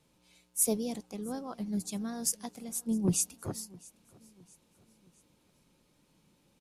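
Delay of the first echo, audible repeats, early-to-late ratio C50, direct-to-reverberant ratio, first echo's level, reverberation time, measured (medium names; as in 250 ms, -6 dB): 662 ms, 2, no reverb, no reverb, -23.5 dB, no reverb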